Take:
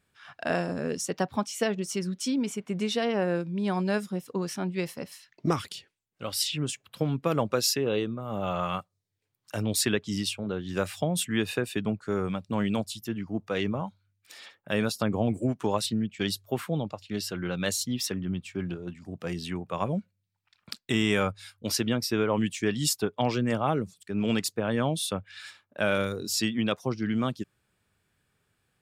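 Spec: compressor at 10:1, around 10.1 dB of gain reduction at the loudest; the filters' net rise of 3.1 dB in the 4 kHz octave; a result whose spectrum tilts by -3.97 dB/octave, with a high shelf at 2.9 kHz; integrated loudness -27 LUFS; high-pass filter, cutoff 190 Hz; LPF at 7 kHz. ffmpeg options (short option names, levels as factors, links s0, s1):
-af "highpass=190,lowpass=7000,highshelf=f=2900:g=-3.5,equalizer=f=4000:t=o:g=7.5,acompressor=threshold=0.0251:ratio=10,volume=3.35"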